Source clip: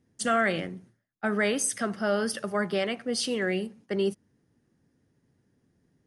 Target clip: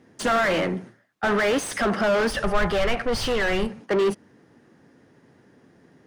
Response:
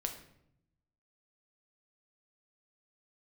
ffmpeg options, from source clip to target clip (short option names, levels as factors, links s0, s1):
-filter_complex "[0:a]asplit=2[s0][s1];[s1]highpass=f=720:p=1,volume=31.6,asoftclip=type=tanh:threshold=0.224[s2];[s0][s2]amix=inputs=2:normalize=0,lowpass=f=1400:p=1,volume=0.501,asplit=3[s3][s4][s5];[s3]afade=t=out:st=2.29:d=0.02[s6];[s4]asubboost=boost=12:cutoff=85,afade=t=in:st=2.29:d=0.02,afade=t=out:st=3.79:d=0.02[s7];[s5]afade=t=in:st=3.79:d=0.02[s8];[s6][s7][s8]amix=inputs=3:normalize=0"